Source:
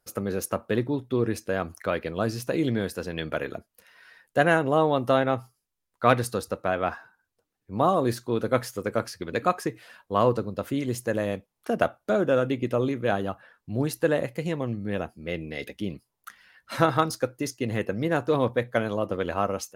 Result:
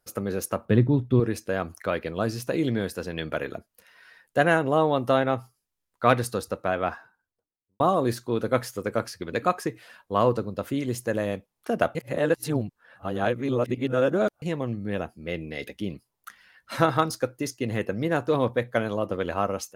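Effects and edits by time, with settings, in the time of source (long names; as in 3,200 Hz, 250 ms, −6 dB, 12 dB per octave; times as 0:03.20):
0:00.65–0:01.20: bass and treble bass +12 dB, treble −6 dB
0:06.81–0:07.80: fade out and dull
0:11.95–0:14.42: reverse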